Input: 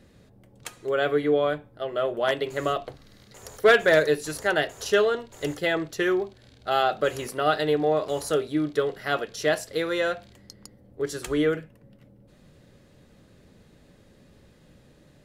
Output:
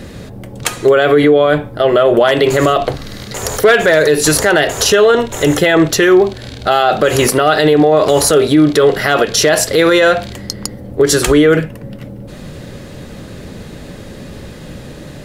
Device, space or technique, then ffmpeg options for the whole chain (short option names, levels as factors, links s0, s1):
loud club master: -filter_complex "[0:a]acompressor=threshold=0.0631:ratio=2.5,asoftclip=type=hard:threshold=0.15,alimiter=level_in=18.8:limit=0.891:release=50:level=0:latency=1,asettb=1/sr,asplit=3[s0][s1][s2];[s0]atrim=end=4.904[s3];[s1]atrim=start=4.9:end=5.88,asetpts=PTS-STARTPTS,afade=t=in:d=0.004:c=qsin,afade=t=out:st=0.976:d=0.004:c=qsin,bandreject=f=4600:w=5.9[s4];[s2]atrim=start=5.876[s5];[s3][s4]acrossfade=d=0.004:c1=hsin:c2=qsin[s6];[s6][s5]acrossfade=d=0.004:c1=qsin:c2=hsin,volume=0.891"